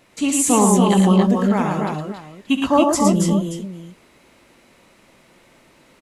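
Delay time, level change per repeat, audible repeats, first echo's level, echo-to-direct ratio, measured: 69 ms, repeats not evenly spaced, 4, −10.5 dB, 0.0 dB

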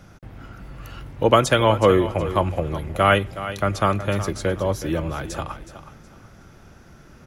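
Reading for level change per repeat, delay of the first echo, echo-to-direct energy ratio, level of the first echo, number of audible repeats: −11.5 dB, 369 ms, −12.5 dB, −13.0 dB, 2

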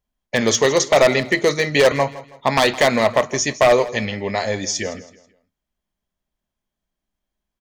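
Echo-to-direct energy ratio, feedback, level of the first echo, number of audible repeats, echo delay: −16.5 dB, 34%, −17.0 dB, 2, 162 ms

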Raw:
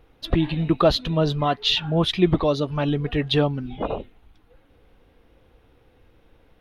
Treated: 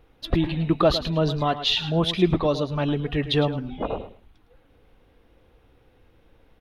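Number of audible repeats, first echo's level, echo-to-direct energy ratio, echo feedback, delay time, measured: 2, −12.0 dB, −12.0 dB, 18%, 108 ms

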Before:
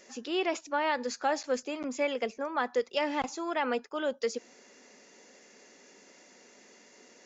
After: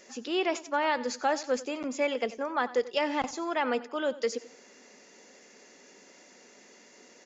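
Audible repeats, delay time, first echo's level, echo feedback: 3, 90 ms, −17.5 dB, 40%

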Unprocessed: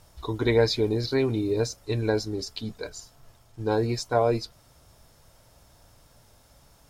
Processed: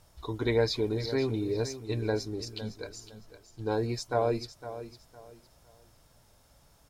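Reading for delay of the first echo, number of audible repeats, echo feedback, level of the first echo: 508 ms, 2, 27%, −13.0 dB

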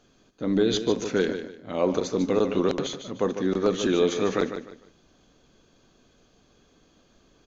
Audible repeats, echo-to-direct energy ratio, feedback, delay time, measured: 3, −9.0 dB, 28%, 150 ms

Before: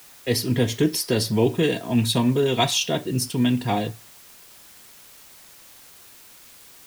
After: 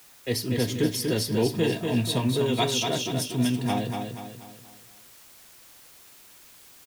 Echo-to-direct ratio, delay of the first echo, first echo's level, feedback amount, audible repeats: −4.0 dB, 240 ms, −5.0 dB, 43%, 5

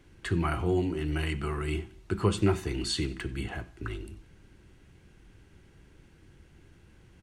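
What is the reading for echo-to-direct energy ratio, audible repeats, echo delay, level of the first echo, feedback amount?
−22.0 dB, 2, 92 ms, −23.0 dB, 44%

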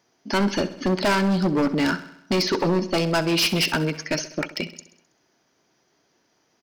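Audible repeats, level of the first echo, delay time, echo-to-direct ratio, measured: 5, −15.0 dB, 65 ms, −13.0 dB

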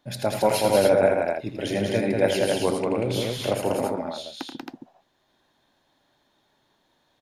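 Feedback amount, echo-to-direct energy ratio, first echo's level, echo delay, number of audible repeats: repeats not evenly spaced, 0.0 dB, −7.5 dB, 81 ms, 4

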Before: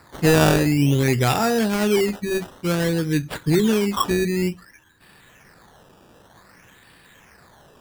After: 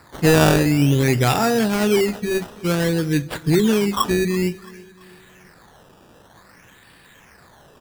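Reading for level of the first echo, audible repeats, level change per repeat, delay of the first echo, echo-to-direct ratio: −21.0 dB, 3, −6.5 dB, 335 ms, −20.0 dB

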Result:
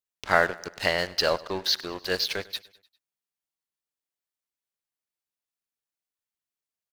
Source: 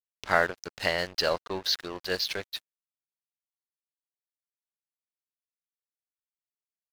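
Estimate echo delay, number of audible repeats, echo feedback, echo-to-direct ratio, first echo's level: 100 ms, 3, 52%, −19.5 dB, −21.0 dB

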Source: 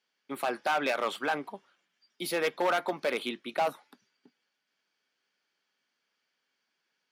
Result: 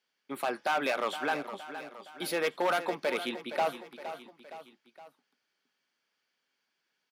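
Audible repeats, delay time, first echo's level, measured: 3, 466 ms, −11.5 dB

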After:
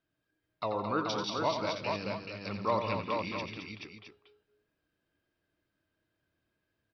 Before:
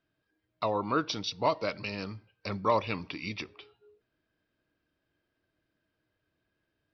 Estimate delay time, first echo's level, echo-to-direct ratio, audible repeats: 88 ms, −8.0 dB, −0.5 dB, 5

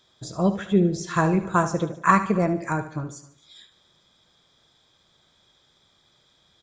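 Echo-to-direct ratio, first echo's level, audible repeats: −11.0 dB, −12.0 dB, 4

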